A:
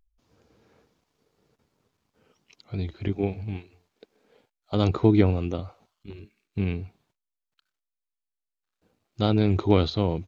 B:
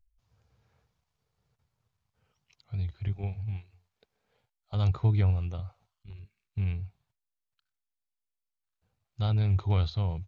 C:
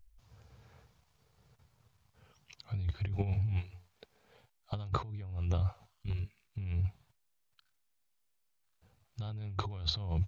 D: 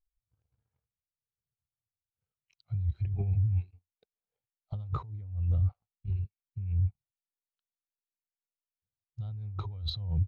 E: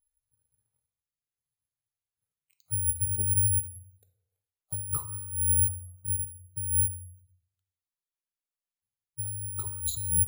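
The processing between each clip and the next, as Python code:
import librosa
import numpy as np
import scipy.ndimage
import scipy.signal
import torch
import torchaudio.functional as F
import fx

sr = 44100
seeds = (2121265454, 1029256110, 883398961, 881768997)

y1 = fx.curve_eq(x, sr, hz=(120.0, 290.0, 770.0), db=(0, -22, -9))
y2 = fx.over_compress(y1, sr, threshold_db=-37.0, ratio=-1.0)
y2 = F.gain(torch.from_numpy(y2), 2.0).numpy()
y3 = fx.leveller(y2, sr, passes=2)
y3 = fx.spectral_expand(y3, sr, expansion=1.5)
y3 = F.gain(torch.from_numpy(y3), -4.0).numpy()
y4 = (np.kron(scipy.signal.resample_poly(y3, 1, 4), np.eye(4)[0]) * 4)[:len(y3)]
y4 = fx.rev_plate(y4, sr, seeds[0], rt60_s=0.89, hf_ratio=0.6, predelay_ms=0, drr_db=8.5)
y4 = F.gain(torch.from_numpy(y4), -4.0).numpy()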